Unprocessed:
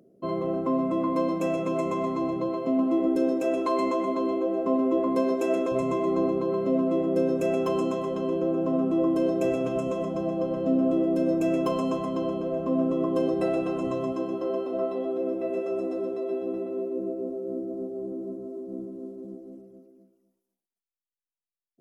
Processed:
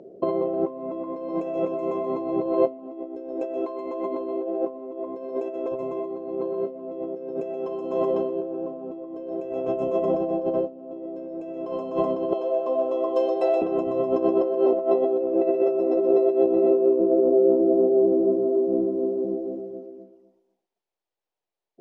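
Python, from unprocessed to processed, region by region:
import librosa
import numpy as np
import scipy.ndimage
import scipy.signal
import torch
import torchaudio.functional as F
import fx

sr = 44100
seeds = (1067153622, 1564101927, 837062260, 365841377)

y = fx.chain(x, sr, fx.highpass(hz=870.0, slope=12),
    fx.peak_eq(hz=1600.0, db=-10.5, octaves=1.5), at=(12.33, 13.62))
y = fx.over_compress(y, sr, threshold_db=-32.0, ratio=-0.5)
y = scipy.signal.sosfilt(scipy.signal.butter(2, 4500.0, 'lowpass', fs=sr, output='sos'), y)
y = fx.band_shelf(y, sr, hz=560.0, db=10.5, octaves=1.7)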